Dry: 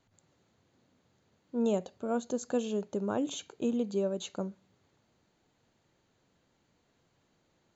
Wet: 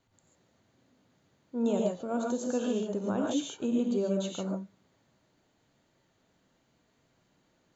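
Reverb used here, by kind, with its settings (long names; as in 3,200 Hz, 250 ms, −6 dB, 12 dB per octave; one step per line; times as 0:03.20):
reverb whose tail is shaped and stops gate 170 ms rising, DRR −1 dB
level −1.5 dB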